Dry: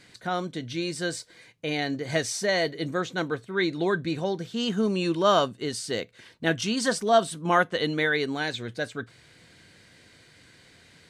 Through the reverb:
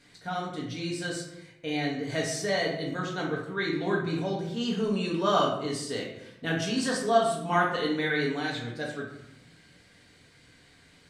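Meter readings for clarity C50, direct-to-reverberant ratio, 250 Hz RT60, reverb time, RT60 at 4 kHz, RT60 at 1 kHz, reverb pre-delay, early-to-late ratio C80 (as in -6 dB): 4.0 dB, -3.0 dB, 1.0 s, 0.85 s, 0.55 s, 0.80 s, 4 ms, 7.5 dB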